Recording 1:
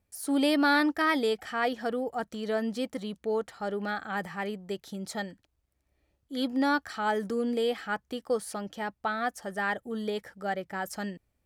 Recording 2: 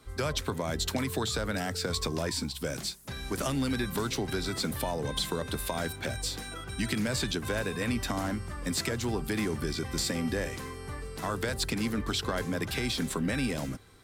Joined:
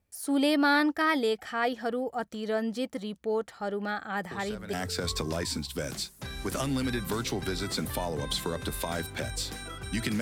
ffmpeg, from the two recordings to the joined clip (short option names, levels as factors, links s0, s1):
-filter_complex "[1:a]asplit=2[s0][s1];[0:a]apad=whole_dur=10.21,atrim=end=10.21,atrim=end=4.732[s2];[s1]atrim=start=1.588:end=7.07[s3];[s0]atrim=start=1.17:end=1.59,asetpts=PTS-STARTPTS,volume=0.266,afade=t=in:d=0.004:c=hsin,afade=t=out:st=0.416:d=0.004:c=hsin,adelay=4310[s4];[s2][s3]acrossfade=d=0.004:c1=hsin:c2=hsin[s5];[s5][s4]amix=inputs=2:normalize=0"